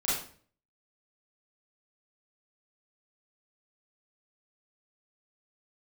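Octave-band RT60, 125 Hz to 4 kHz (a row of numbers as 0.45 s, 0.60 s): 0.65 s, 0.60 s, 0.50 s, 0.45 s, 0.45 s, 0.40 s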